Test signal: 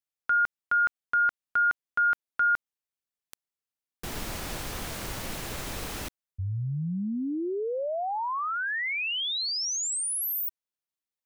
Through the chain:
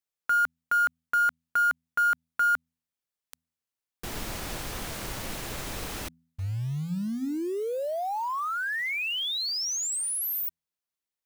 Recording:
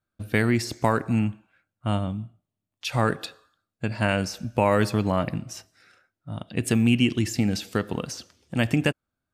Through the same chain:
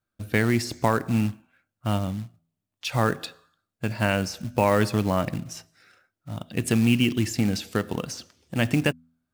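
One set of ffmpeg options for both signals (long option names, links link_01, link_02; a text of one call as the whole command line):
ffmpeg -i in.wav -af "acrusher=bits=5:mode=log:mix=0:aa=0.000001,bandreject=frequency=82.24:width_type=h:width=4,bandreject=frequency=164.48:width_type=h:width=4,bandreject=frequency=246.72:width_type=h:width=4" out.wav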